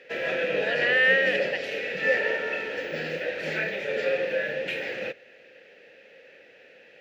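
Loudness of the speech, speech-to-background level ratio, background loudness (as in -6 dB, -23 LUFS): -25.0 LUFS, 3.0 dB, -28.0 LUFS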